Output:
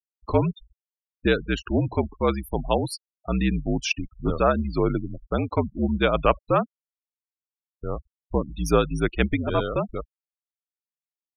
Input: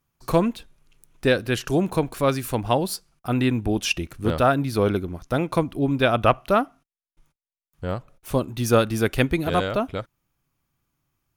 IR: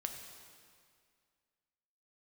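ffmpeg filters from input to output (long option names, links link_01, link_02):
-af "afreqshift=-62,afftfilt=real='re*gte(hypot(re,im),0.0447)':imag='im*gte(hypot(re,im),0.0447)':win_size=1024:overlap=0.75,volume=-1.5dB"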